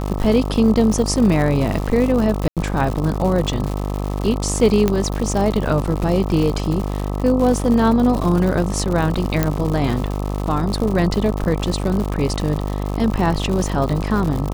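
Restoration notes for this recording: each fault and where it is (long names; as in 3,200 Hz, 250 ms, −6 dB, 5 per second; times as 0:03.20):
mains buzz 50 Hz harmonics 26 −23 dBFS
surface crackle 160 per second −23 dBFS
0:02.48–0:02.57: drop-out 87 ms
0:04.88: click −5 dBFS
0:09.43: click −3 dBFS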